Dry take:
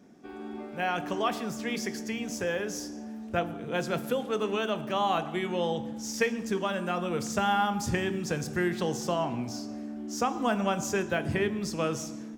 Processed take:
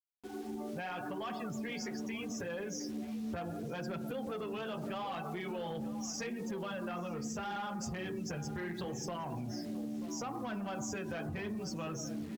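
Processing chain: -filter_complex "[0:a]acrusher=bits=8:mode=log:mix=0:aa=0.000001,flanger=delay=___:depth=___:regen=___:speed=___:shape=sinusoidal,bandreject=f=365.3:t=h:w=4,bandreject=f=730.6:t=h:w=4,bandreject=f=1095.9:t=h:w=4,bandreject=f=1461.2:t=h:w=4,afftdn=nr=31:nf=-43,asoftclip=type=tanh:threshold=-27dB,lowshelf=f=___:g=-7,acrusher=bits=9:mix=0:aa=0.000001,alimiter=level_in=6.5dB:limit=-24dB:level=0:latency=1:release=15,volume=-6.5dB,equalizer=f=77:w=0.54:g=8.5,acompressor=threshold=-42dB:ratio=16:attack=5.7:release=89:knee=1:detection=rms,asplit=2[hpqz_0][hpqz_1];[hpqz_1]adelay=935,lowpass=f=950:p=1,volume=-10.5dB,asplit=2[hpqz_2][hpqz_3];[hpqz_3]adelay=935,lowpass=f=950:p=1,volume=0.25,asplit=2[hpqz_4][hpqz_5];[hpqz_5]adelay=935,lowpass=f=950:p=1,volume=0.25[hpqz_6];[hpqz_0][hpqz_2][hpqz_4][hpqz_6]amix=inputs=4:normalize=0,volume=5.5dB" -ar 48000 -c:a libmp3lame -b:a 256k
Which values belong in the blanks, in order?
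5.2, 8.4, -13, 0.76, 330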